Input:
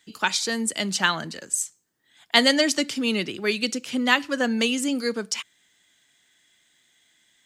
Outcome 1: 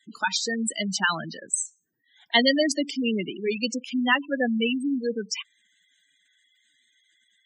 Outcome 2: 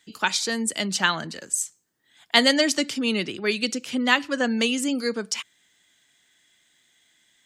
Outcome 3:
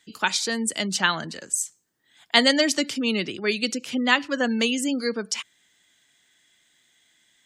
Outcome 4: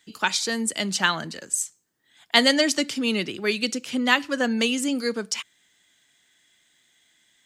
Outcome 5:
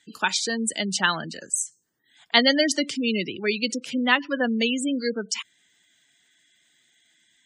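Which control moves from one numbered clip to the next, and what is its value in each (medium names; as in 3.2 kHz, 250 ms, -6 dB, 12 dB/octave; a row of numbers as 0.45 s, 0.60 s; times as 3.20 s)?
spectral gate, under each frame's peak: -10 dB, -45 dB, -35 dB, -60 dB, -20 dB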